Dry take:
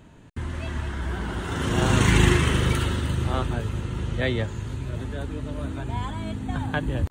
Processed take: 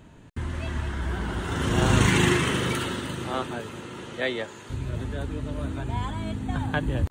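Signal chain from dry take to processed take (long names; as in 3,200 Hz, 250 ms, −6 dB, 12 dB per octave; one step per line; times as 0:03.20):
0:02.08–0:04.69: high-pass filter 130 Hz → 390 Hz 12 dB per octave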